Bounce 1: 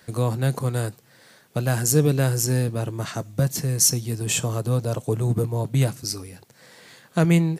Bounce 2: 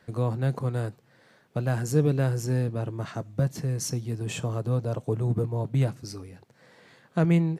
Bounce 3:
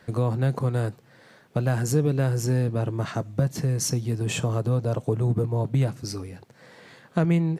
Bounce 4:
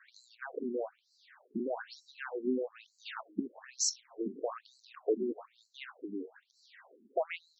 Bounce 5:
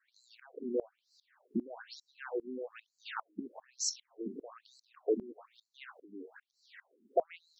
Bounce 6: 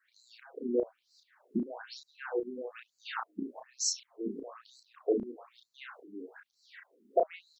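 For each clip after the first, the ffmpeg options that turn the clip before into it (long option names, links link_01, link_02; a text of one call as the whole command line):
ffmpeg -i in.wav -af "lowpass=frequency=1800:poles=1,volume=-3.5dB" out.wav
ffmpeg -i in.wav -af "acompressor=threshold=-28dB:ratio=2,volume=6dB" out.wav
ffmpeg -i in.wav -af "afftfilt=real='re*between(b*sr/1024,280*pow(5700/280,0.5+0.5*sin(2*PI*1.1*pts/sr))/1.41,280*pow(5700/280,0.5+0.5*sin(2*PI*1.1*pts/sr))*1.41)':imag='im*between(b*sr/1024,280*pow(5700/280,0.5+0.5*sin(2*PI*1.1*pts/sr))/1.41,280*pow(5700/280,0.5+0.5*sin(2*PI*1.1*pts/sr))*1.41)':win_size=1024:overlap=0.75,volume=-1.5dB" out.wav
ffmpeg -i in.wav -af "aeval=exprs='val(0)*pow(10,-23*if(lt(mod(-2.5*n/s,1),2*abs(-2.5)/1000),1-mod(-2.5*n/s,1)/(2*abs(-2.5)/1000),(mod(-2.5*n/s,1)-2*abs(-2.5)/1000)/(1-2*abs(-2.5)/1000))/20)':channel_layout=same,volume=5dB" out.wav
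ffmpeg -i in.wav -filter_complex "[0:a]asplit=2[link_01][link_02];[link_02]adelay=33,volume=-4dB[link_03];[link_01][link_03]amix=inputs=2:normalize=0,volume=2dB" out.wav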